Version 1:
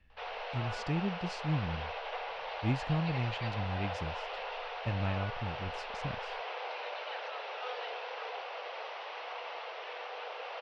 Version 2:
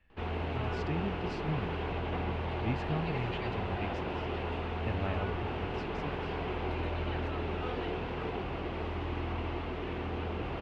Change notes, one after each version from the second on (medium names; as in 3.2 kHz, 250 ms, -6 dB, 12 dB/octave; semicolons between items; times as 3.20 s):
background: remove Chebyshev band-pass 490–5800 Hz, order 5; master: add tone controls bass -4 dB, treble -10 dB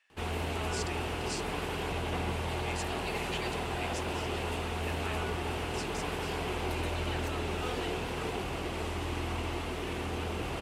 speech: add high-pass 940 Hz 12 dB/octave; master: remove distance through air 310 m